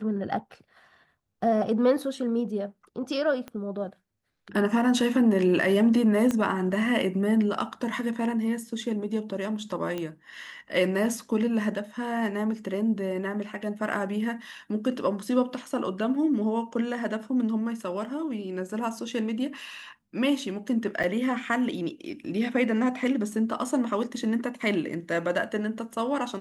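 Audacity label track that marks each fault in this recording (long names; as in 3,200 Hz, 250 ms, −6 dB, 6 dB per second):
3.480000	3.480000	click −24 dBFS
6.310000	6.310000	click −15 dBFS
9.980000	9.980000	click −19 dBFS
21.030000	21.040000	drop-out 7.4 ms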